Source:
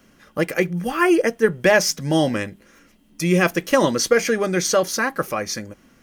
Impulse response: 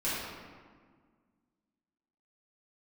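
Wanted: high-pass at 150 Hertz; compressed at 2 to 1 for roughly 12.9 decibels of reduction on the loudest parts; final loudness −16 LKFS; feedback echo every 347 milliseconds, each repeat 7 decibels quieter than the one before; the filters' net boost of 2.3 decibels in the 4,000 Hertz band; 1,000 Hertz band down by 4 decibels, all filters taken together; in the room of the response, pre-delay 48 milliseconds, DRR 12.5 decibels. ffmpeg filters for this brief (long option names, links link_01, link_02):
-filter_complex "[0:a]highpass=150,equalizer=frequency=1000:width_type=o:gain=-5.5,equalizer=frequency=4000:width_type=o:gain=3.5,acompressor=threshold=-37dB:ratio=2,aecho=1:1:347|694|1041|1388|1735:0.447|0.201|0.0905|0.0407|0.0183,asplit=2[link_01][link_02];[1:a]atrim=start_sample=2205,adelay=48[link_03];[link_02][link_03]afir=irnorm=-1:irlink=0,volume=-20.5dB[link_04];[link_01][link_04]amix=inputs=2:normalize=0,volume=15dB"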